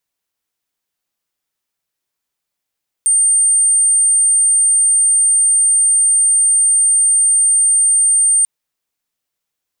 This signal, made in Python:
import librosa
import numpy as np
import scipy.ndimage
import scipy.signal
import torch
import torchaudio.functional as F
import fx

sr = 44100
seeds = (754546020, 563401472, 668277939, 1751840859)

y = 10.0 ** (-9.0 / 20.0) * np.sin(2.0 * np.pi * (8790.0 * (np.arange(round(5.39 * sr)) / sr)))